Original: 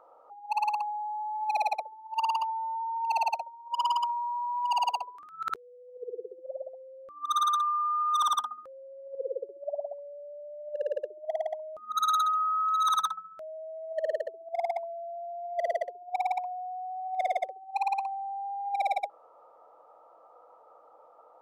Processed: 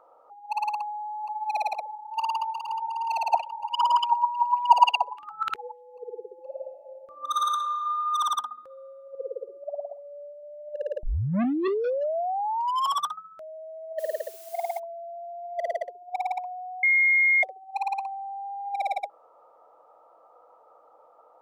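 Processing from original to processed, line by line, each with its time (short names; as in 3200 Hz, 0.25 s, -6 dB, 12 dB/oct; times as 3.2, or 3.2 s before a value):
0.76–1.48 echo throw 0.47 s, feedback 80%, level -6.5 dB
2.01–2.63 echo throw 0.36 s, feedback 60%, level -6.5 dB
3.3–5.81 LFO bell 3.4 Hz 500–3300 Hz +16 dB
6.37–7.53 reverb throw, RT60 2.8 s, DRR 4 dB
8.66–10.43 flutter echo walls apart 8.3 m, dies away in 0.25 s
11.03 tape start 2.16 s
13.98–14.78 added noise blue -48 dBFS
16.83–17.43 bleep 2140 Hz -17 dBFS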